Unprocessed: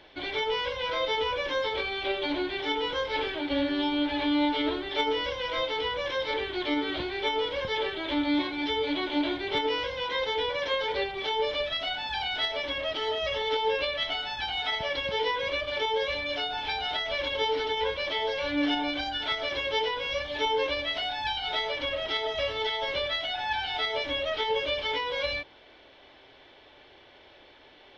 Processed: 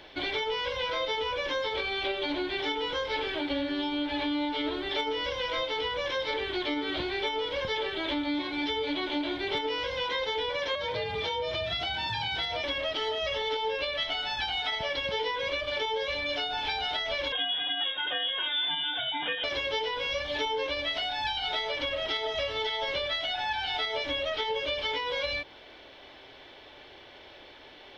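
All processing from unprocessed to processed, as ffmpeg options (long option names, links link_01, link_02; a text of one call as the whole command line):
ffmpeg -i in.wav -filter_complex "[0:a]asettb=1/sr,asplit=3[link_01][link_02][link_03];[link_01]atrim=end=10.754[link_04];[link_02]atrim=start=10.75:end=12.64,asetpts=PTS-STARTPTS,afade=type=in:duration=0.004:curve=qsin,afade=type=out:start_time=1.886:duration=0.004:curve=qsin,lowshelf=frequency=210:gain=9,acompressor=threshold=-30dB:ratio=2.5:attack=3.2:release=140:knee=1:detection=peak,afreqshift=48[link_05];[link_03]atrim=start=12.636[link_06];[link_04][link_05]acrossfade=duration=0.004:curve1=hsin:curve2=qsin[link_07];[link_07][link_06]acrossfade=duration=0.004:curve1=qsin:curve2=hsin,asettb=1/sr,asplit=3[link_08][link_09][link_10];[link_08]atrim=end=17.324[link_11];[link_09]atrim=start=17.32:end=19.44,asetpts=PTS-STARTPTS,afade=type=in:duration=0.004:curve=qsin,afade=type=out:start_time=2.116:duration=0.004:curve=qsin,bandreject=frequency=1500:width=14,lowpass=frequency=3200:width_type=q:width=0.5098,lowpass=frequency=3200:width_type=q:width=0.6013,lowpass=frequency=3200:width_type=q:width=0.9,lowpass=frequency=3200:width_type=q:width=2.563,afreqshift=-3800[link_12];[link_10]atrim=start=19.436[link_13];[link_11][link_12]acrossfade=duration=0.004:curve1=hsin:curve2=qsin[link_14];[link_14][link_13]acrossfade=duration=0.004:curve1=qsin:curve2=hsin,highshelf=frequency=5400:gain=5,acompressor=threshold=-32dB:ratio=4,volume=3.5dB" out.wav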